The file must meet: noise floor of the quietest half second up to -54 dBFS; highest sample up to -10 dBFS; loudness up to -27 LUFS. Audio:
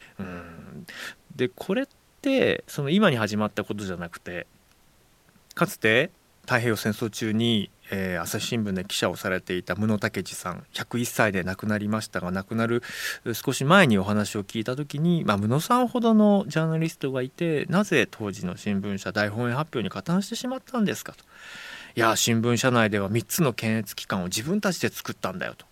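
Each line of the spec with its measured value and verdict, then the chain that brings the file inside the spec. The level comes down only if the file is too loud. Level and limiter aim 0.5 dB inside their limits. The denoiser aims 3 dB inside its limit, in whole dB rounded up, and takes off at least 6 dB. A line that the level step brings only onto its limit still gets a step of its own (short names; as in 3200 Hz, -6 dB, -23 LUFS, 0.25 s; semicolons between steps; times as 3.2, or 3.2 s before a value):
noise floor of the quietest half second -59 dBFS: OK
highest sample -3.0 dBFS: fail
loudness -25.0 LUFS: fail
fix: gain -2.5 dB; limiter -10.5 dBFS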